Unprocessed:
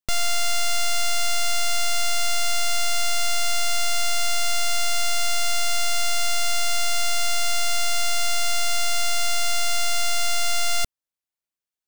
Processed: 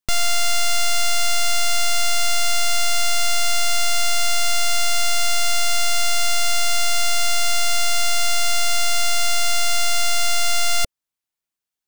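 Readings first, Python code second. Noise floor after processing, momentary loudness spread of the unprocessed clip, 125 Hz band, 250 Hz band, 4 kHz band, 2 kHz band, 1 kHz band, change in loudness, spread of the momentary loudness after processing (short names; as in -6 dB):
under -85 dBFS, 0 LU, n/a, +3.5 dB, +3.5 dB, +3.5 dB, +3.0 dB, +3.5 dB, 0 LU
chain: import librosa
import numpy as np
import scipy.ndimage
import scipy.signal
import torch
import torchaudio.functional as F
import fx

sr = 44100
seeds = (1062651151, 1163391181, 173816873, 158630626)

y = fx.peak_eq(x, sr, hz=550.0, db=-6.5, octaves=0.22)
y = y * librosa.db_to_amplitude(3.5)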